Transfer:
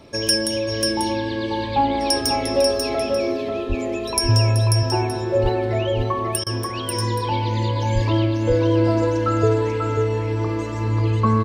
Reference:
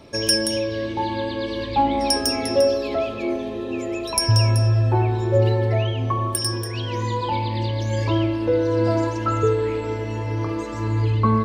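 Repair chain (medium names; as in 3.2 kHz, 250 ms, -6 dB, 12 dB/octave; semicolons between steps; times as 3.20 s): de-plosive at 3.68/5.42/7.94 s; interpolate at 6.44 s, 24 ms; inverse comb 540 ms -4.5 dB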